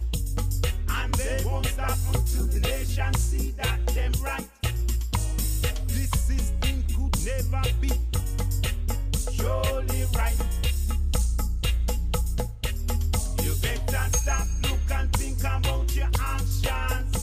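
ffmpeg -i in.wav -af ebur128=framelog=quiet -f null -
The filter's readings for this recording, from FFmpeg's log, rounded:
Integrated loudness:
  I:         -27.1 LUFS
  Threshold: -37.1 LUFS
Loudness range:
  LRA:         1.0 LU
  Threshold: -47.0 LUFS
  LRA low:   -27.5 LUFS
  LRA high:  -26.4 LUFS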